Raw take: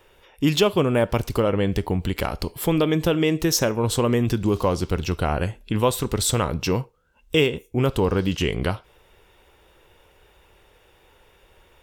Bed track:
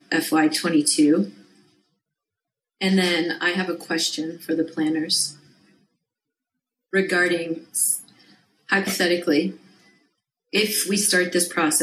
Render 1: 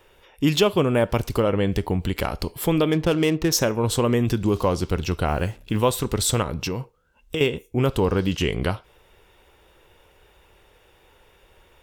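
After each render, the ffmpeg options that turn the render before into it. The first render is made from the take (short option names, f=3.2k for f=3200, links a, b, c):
-filter_complex "[0:a]asplit=3[a][b][c];[a]afade=t=out:st=2.91:d=0.02[d];[b]adynamicsmooth=sensitivity=7:basefreq=1.1k,afade=t=in:st=2.91:d=0.02,afade=t=out:st=3.51:d=0.02[e];[c]afade=t=in:st=3.51:d=0.02[f];[d][e][f]amix=inputs=3:normalize=0,asettb=1/sr,asplit=3[g][h][i];[g]atrim=end=5.284[j];[h]atrim=start=5.28:end=5.91,asetpts=PTS-STARTPTS,afade=t=in:d=0.004:c=qsin,afade=t=out:st=0.626:d=0.004:c=qsin,acrusher=bits=7:mix=0:aa=0.5[k];[i]atrim=start=5.906[l];[j][k]acrossfade=d=0.004:c1=hsin:c2=qsin[m];[m][l]acrossfade=d=0.004:c1=qsin:c2=hsin,asettb=1/sr,asplit=3[n][o][p];[n]atrim=end=6.424[q];[o]atrim=start=6.42:end=7.41,asetpts=PTS-STARTPTS,afade=t=in:d=0.004:c=qsin,afade=t=out:st=0.986:d=0.004:c=qsin,acompressor=threshold=-22dB:ratio=6:attack=3.2:release=140:knee=1:detection=peak[r];[p]atrim=start=7.406[s];[q][r]acrossfade=d=0.004:c1=hsin:c2=qsin[t];[t][s]acrossfade=d=0.004:c1=qsin:c2=hsin"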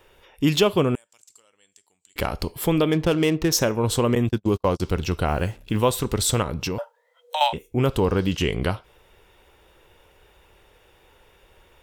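-filter_complex "[0:a]asettb=1/sr,asplit=3[a][b][c];[a]atrim=end=0.954[d];[b]atrim=start=0.95:end=2.16,asetpts=PTS-STARTPTS,afade=t=in:d=0.004:c=qsin,afade=t=out:st=1.206:d=0.004:c=qsin,bandpass=f=7.5k:t=q:w=8.3[e];[c]atrim=start=2.156[f];[d][e]acrossfade=d=0.004:c1=hsin:c2=qsin[g];[g][f]acrossfade=d=0.004:c1=qsin:c2=hsin,asettb=1/sr,asplit=3[h][i][j];[h]atrim=end=4.154[k];[i]atrim=start=4.15:end=4.8,asetpts=PTS-STARTPTS,afade=t=in:d=0.004:c=qsin,afade=t=out:st=0.646:d=0.004:c=qsin,agate=range=-45dB:threshold=-23dB:ratio=16:release=100:detection=peak[l];[j]atrim=start=4.796[m];[k][l]acrossfade=d=0.004:c1=hsin:c2=qsin[n];[n][m]acrossfade=d=0.004:c1=qsin:c2=hsin,asettb=1/sr,asplit=3[o][p][q];[o]atrim=end=6.784[r];[p]atrim=start=6.78:end=7.53,asetpts=PTS-STARTPTS,afade=t=in:d=0.004:c=qsin,afade=t=out:st=0.746:d=0.004:c=qsin,afreqshift=450[s];[q]atrim=start=7.526[t];[r][s]acrossfade=d=0.004:c1=hsin:c2=qsin[u];[u][t]acrossfade=d=0.004:c1=qsin:c2=hsin"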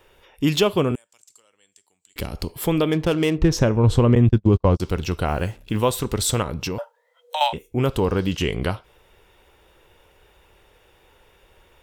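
-filter_complex "[0:a]asettb=1/sr,asplit=3[a][b][c];[a]atrim=end=0.914[d];[b]atrim=start=0.91:end=2.49,asetpts=PTS-STARTPTS,afade=t=in:d=0.004:c=qsin,afade=t=out:st=1.576:d=0.004:c=qsin,acrossover=split=420|3000[e][f][g];[f]acompressor=threshold=-36dB:ratio=6:attack=3.2:release=140:knee=2.83:detection=peak[h];[e][h][g]amix=inputs=3:normalize=0[i];[c]atrim=start=2.486[j];[d][i]acrossfade=d=0.004:c1=hsin:c2=qsin[k];[k][j]acrossfade=d=0.004:c1=qsin:c2=hsin,asettb=1/sr,asplit=3[l][m][n];[l]atrim=end=3.384[o];[m]atrim=start=3.38:end=4.77,asetpts=PTS-STARTPTS,afade=t=in:d=0.004:c=qsin,afade=t=out:st=1.386:d=0.004:c=qsin,aemphasis=mode=reproduction:type=bsi[p];[n]atrim=start=4.766[q];[o][p]acrossfade=d=0.004:c1=hsin:c2=qsin[r];[r][q]acrossfade=d=0.004:c1=qsin:c2=hsin"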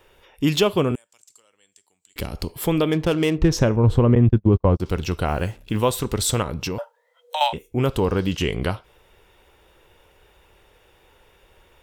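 -filter_complex "[0:a]asettb=1/sr,asplit=3[a][b][c];[a]atrim=end=3.764[d];[b]atrim=start=3.76:end=4.86,asetpts=PTS-STARTPTS,afade=t=in:d=0.004:c=qsin,afade=t=out:st=1.096:d=0.004:c=qsin,equalizer=f=6.6k:t=o:w=2.2:g=-11.5[e];[c]atrim=start=4.856[f];[d][e]acrossfade=d=0.004:c1=hsin:c2=qsin[g];[g][f]acrossfade=d=0.004:c1=qsin:c2=hsin"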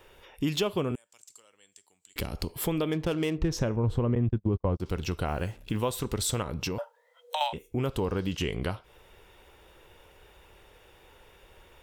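-af "acompressor=threshold=-32dB:ratio=2"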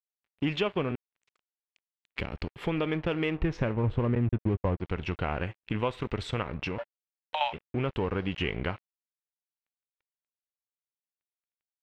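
-af "aeval=exprs='sgn(val(0))*max(abs(val(0))-0.00631,0)':c=same,lowpass=f=2.4k:t=q:w=1.9"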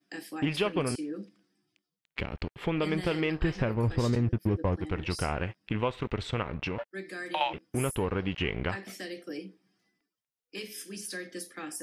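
-filter_complex "[1:a]volume=-19.5dB[a];[0:a][a]amix=inputs=2:normalize=0"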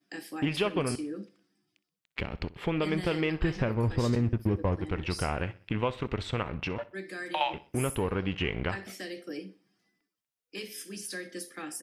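-af "aecho=1:1:63|126|189:0.112|0.0482|0.0207"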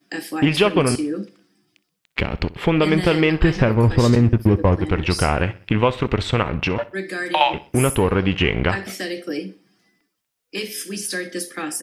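-af "volume=12dB"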